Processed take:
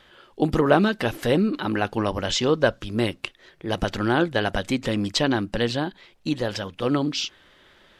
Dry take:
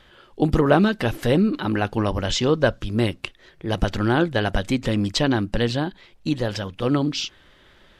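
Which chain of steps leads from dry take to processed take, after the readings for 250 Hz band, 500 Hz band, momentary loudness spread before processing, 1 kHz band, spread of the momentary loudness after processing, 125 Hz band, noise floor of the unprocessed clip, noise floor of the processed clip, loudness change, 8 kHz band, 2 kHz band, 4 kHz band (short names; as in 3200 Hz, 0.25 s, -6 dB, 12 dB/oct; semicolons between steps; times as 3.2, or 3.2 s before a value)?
-2.0 dB, -0.5 dB, 10 LU, 0.0 dB, 10 LU, -5.0 dB, -54 dBFS, -57 dBFS, -1.5 dB, 0.0 dB, 0.0 dB, 0.0 dB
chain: low shelf 140 Hz -9 dB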